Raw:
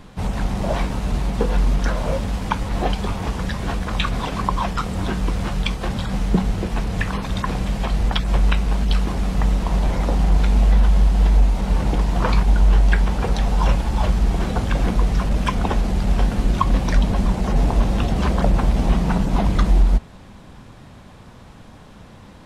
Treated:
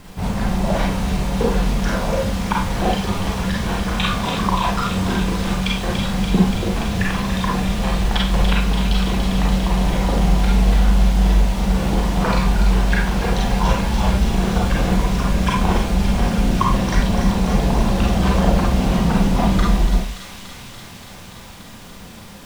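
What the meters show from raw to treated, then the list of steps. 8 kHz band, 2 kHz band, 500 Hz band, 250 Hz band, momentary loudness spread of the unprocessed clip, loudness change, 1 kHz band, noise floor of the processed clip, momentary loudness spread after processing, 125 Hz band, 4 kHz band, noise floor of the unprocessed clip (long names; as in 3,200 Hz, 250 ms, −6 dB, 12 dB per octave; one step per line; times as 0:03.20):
can't be measured, +4.5 dB, +3.5 dB, +5.0 dB, 7 LU, +2.0 dB, +3.5 dB, −38 dBFS, 6 LU, +1.0 dB, +5.5 dB, −43 dBFS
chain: bit-depth reduction 8 bits, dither none
on a send: delay with a high-pass on its return 288 ms, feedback 81%, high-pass 2,400 Hz, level −5.5 dB
on the sum: four-comb reverb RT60 0.37 s, combs from 32 ms, DRR −2.5 dB
level −1 dB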